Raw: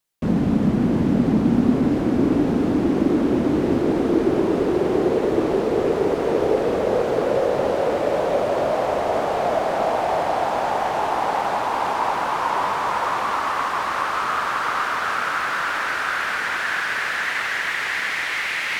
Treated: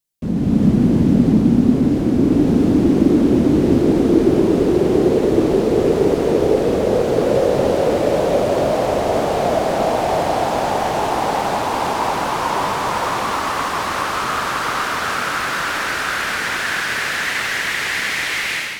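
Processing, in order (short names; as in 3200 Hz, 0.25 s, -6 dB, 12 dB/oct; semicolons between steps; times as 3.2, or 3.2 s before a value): bell 1200 Hz -10 dB 2.9 oct; AGC gain up to 11 dB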